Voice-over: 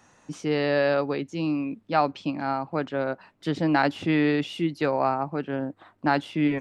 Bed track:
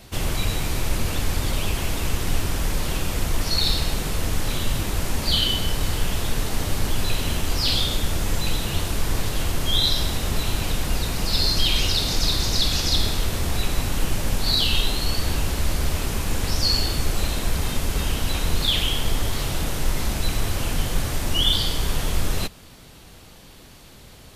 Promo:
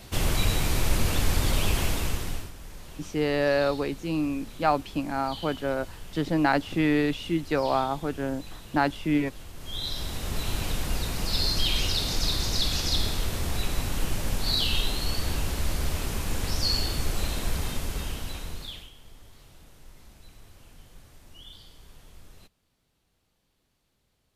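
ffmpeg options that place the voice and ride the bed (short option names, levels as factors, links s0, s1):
-filter_complex "[0:a]adelay=2700,volume=0.891[s0];[1:a]volume=5.01,afade=t=out:st=1.81:d=0.71:silence=0.112202,afade=t=in:st=9.54:d=1.03:silence=0.188365,afade=t=out:st=17.53:d=1.38:silence=0.0749894[s1];[s0][s1]amix=inputs=2:normalize=0"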